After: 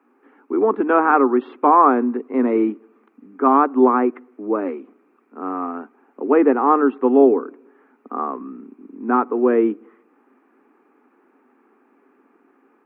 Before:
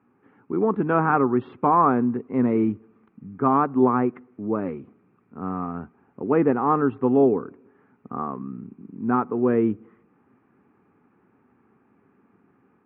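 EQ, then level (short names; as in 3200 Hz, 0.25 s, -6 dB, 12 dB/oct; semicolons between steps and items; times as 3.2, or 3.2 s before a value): steep high-pass 250 Hz 48 dB/oct; +5.5 dB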